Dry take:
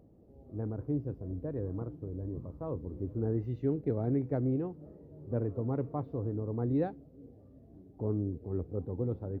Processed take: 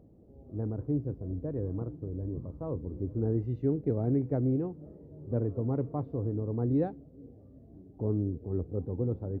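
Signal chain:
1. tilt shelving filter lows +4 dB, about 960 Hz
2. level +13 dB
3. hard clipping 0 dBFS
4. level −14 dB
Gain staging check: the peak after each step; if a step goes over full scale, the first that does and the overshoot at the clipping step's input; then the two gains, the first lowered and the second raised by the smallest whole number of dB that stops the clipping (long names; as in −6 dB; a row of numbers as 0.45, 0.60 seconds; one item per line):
−16.0, −3.0, −3.0, −17.0 dBFS
no step passes full scale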